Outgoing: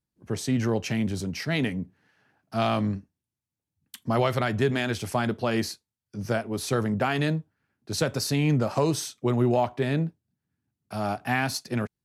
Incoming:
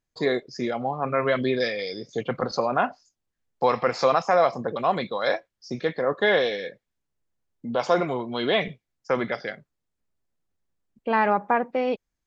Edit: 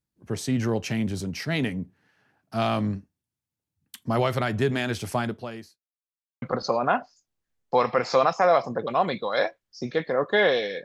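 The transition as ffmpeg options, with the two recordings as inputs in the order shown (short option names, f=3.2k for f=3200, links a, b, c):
-filter_complex "[0:a]apad=whole_dur=10.84,atrim=end=10.84,asplit=2[a][b];[a]atrim=end=5.9,asetpts=PTS-STARTPTS,afade=t=out:st=5.18:d=0.72:c=qua[c];[b]atrim=start=5.9:end=6.42,asetpts=PTS-STARTPTS,volume=0[d];[1:a]atrim=start=2.31:end=6.73,asetpts=PTS-STARTPTS,afade=t=in:d=0.004:c=hsin[e];[c][d][e]concat=n=3:v=0:a=1"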